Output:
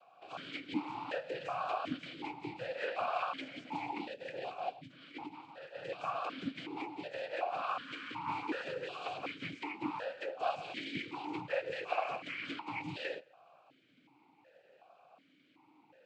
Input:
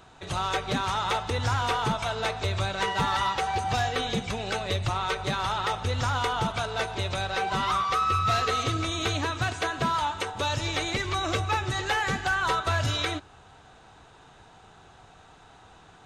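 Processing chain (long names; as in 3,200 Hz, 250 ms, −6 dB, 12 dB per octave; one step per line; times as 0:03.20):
0:04.13–0:05.85: compressor whose output falls as the input rises −33 dBFS, ratio −0.5
flanger 0.29 Hz, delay 6.4 ms, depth 5.4 ms, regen +68%
cochlear-implant simulation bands 8
formant filter that steps through the vowels 2.7 Hz
level +5.5 dB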